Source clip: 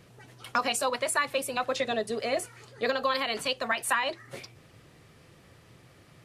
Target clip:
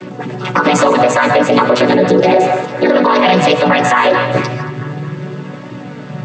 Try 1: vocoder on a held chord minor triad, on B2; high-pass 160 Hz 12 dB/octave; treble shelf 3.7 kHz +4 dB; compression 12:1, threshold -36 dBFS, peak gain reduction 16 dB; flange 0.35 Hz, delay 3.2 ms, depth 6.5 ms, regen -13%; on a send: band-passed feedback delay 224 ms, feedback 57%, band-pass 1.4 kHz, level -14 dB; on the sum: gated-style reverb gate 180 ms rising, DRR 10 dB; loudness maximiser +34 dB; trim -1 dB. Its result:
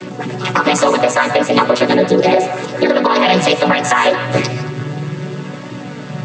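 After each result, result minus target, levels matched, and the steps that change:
compression: peak gain reduction +8.5 dB; 8 kHz band +4.5 dB
change: compression 12:1, threshold -27 dBFS, peak gain reduction 7.5 dB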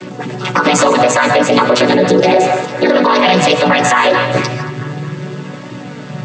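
8 kHz band +6.0 dB
change: treble shelf 3.7 kHz -5 dB

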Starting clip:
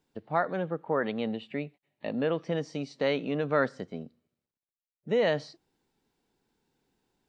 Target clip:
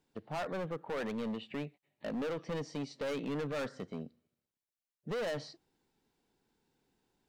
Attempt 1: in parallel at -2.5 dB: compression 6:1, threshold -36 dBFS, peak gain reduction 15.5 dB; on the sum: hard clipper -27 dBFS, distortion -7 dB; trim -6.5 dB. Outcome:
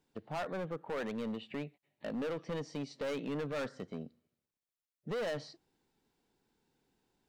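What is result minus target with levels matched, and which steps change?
compression: peak gain reduction +7.5 dB
change: compression 6:1, threshold -27 dBFS, peak gain reduction 8 dB

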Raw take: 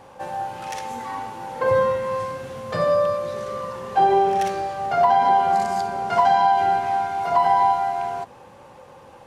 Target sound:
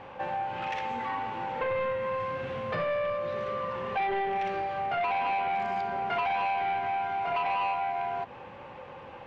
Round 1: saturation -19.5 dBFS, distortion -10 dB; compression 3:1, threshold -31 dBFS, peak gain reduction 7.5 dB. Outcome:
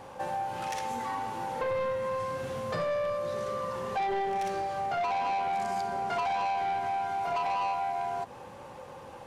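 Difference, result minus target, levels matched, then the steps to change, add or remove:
2 kHz band -3.5 dB
add after compression: resonant low-pass 2.6 kHz, resonance Q 1.9

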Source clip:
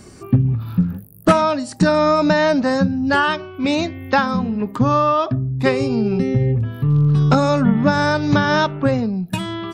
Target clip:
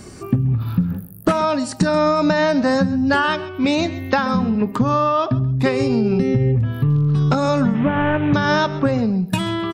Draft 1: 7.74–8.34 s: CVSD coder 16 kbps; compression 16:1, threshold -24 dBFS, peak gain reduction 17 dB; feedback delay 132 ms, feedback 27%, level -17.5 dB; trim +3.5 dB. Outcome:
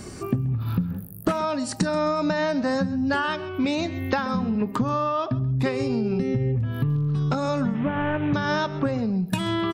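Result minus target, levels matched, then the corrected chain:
compression: peak gain reduction +7 dB
7.74–8.34 s: CVSD coder 16 kbps; compression 16:1, threshold -16.5 dBFS, peak gain reduction 9.5 dB; feedback delay 132 ms, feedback 27%, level -17.5 dB; trim +3.5 dB

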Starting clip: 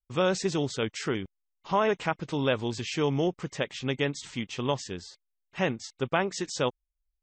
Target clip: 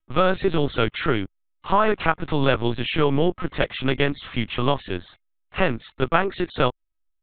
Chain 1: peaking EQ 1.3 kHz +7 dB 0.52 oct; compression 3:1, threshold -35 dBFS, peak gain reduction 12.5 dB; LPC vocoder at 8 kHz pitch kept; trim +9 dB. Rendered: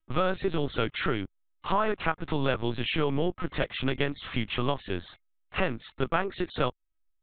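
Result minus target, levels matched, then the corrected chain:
compression: peak gain reduction +7.5 dB
peaking EQ 1.3 kHz +7 dB 0.52 oct; compression 3:1, threshold -23.5 dBFS, peak gain reduction 5 dB; LPC vocoder at 8 kHz pitch kept; trim +9 dB

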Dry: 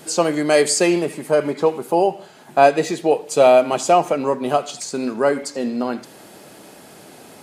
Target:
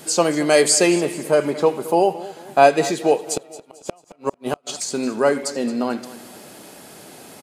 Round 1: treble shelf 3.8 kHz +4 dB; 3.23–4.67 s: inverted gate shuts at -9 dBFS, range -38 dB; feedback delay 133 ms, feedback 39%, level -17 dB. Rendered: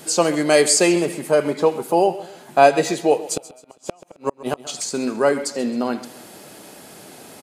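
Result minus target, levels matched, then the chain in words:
echo 89 ms early
treble shelf 3.8 kHz +4 dB; 3.23–4.67 s: inverted gate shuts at -9 dBFS, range -38 dB; feedback delay 222 ms, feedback 39%, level -17 dB

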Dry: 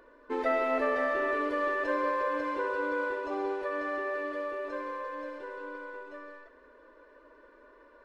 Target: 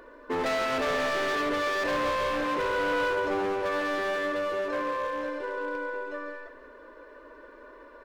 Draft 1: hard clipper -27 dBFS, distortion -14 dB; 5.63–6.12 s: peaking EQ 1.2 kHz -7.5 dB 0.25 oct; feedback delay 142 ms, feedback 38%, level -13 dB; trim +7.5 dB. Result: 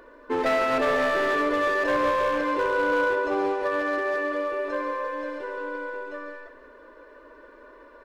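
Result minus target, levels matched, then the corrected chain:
hard clipper: distortion -7 dB
hard clipper -33.5 dBFS, distortion -7 dB; 5.63–6.12 s: peaking EQ 1.2 kHz -7.5 dB 0.25 oct; feedback delay 142 ms, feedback 38%, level -13 dB; trim +7.5 dB

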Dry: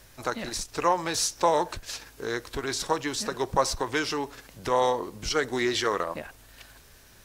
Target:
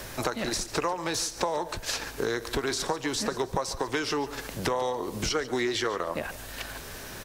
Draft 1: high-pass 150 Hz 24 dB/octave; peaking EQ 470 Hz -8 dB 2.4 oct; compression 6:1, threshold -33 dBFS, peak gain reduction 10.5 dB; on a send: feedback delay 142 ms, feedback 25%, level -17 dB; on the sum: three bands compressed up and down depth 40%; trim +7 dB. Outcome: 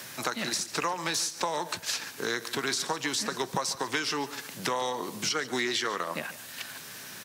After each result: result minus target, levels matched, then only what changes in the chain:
125 Hz band -5.0 dB; 500 Hz band -4.5 dB
remove: high-pass 150 Hz 24 dB/octave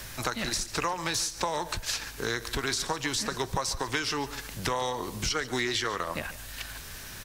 500 Hz band -4.5 dB
change: peaking EQ 470 Hz +2.5 dB 2.4 oct

